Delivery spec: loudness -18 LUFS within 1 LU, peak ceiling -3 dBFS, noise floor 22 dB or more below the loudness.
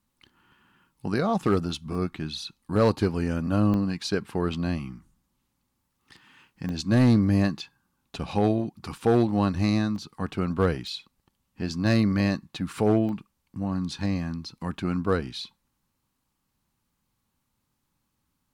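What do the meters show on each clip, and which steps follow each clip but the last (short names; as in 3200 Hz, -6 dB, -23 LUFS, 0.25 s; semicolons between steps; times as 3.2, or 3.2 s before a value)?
clipped 0.3%; flat tops at -13.5 dBFS; dropouts 8; longest dropout 1.1 ms; loudness -26.0 LUFS; peak -13.5 dBFS; loudness target -18.0 LUFS
-> clip repair -13.5 dBFS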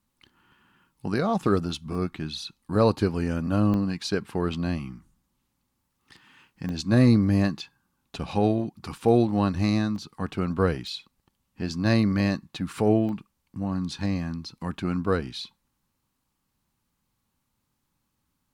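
clipped 0.0%; dropouts 8; longest dropout 1.1 ms
-> interpolate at 1.95/3.74/6.69/7.59/8.31/9.96/10.87/13.09, 1.1 ms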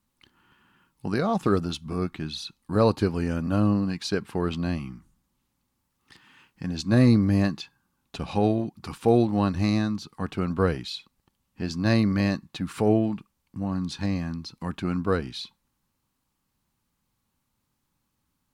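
dropouts 0; loudness -26.0 LUFS; peak -8.0 dBFS; loudness target -18.0 LUFS
-> gain +8 dB; limiter -3 dBFS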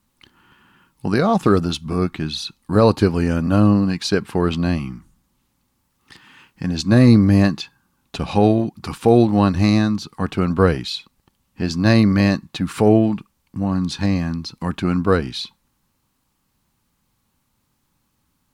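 loudness -18.5 LUFS; peak -3.0 dBFS; noise floor -69 dBFS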